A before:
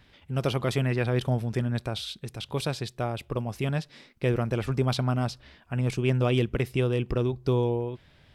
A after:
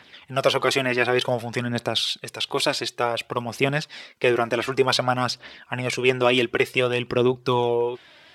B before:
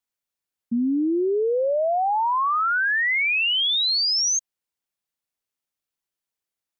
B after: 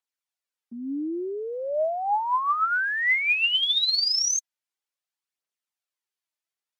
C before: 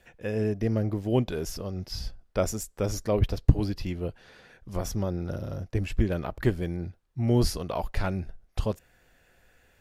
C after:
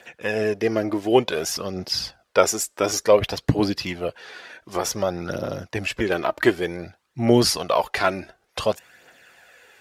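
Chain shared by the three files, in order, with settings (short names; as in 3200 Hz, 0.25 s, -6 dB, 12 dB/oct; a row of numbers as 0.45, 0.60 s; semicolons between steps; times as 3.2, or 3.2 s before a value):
weighting filter A; phaser 0.55 Hz, delay 3.4 ms, feedback 44%; match loudness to -23 LUFS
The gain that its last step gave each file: +10.0, -3.5, +11.5 dB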